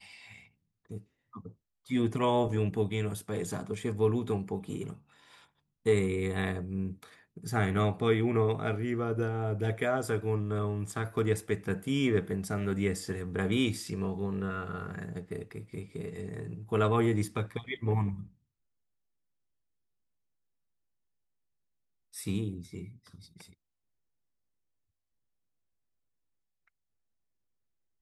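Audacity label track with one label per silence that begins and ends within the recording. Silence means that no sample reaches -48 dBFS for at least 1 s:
18.280000	22.140000	silence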